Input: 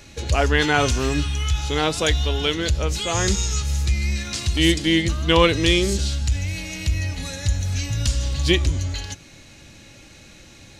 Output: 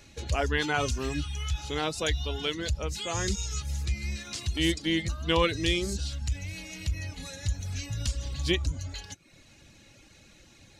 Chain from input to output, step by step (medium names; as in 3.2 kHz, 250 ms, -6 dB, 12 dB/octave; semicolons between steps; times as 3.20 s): reverb removal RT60 0.61 s; trim -8 dB